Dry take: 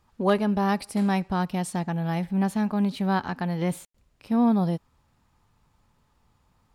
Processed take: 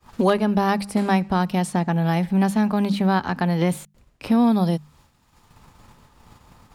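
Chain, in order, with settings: notches 50/100/150/200 Hz; expander -57 dBFS; three-band squash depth 70%; gain +5 dB

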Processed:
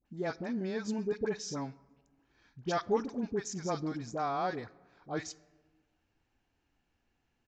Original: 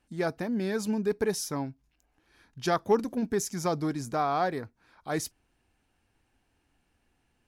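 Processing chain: dispersion highs, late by 59 ms, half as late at 1000 Hz; on a send at -19 dB: reverb RT60 1.4 s, pre-delay 4 ms; on the sum: downsampling 16000 Hz; gain -5.5 dB

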